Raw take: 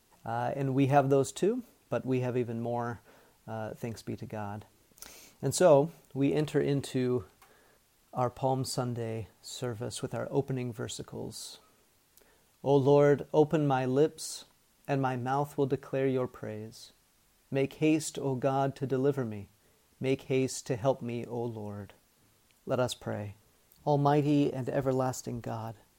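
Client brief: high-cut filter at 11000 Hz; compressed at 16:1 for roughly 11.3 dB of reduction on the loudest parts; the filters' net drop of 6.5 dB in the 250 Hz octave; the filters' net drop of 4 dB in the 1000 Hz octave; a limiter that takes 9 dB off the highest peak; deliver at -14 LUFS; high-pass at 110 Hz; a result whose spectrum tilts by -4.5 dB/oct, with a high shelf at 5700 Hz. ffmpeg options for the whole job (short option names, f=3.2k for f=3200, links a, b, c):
-af "highpass=110,lowpass=11k,equalizer=f=250:t=o:g=-8,equalizer=f=1k:t=o:g=-5.5,highshelf=f=5.7k:g=8,acompressor=threshold=-31dB:ratio=16,volume=27.5dB,alimiter=limit=-2.5dB:level=0:latency=1"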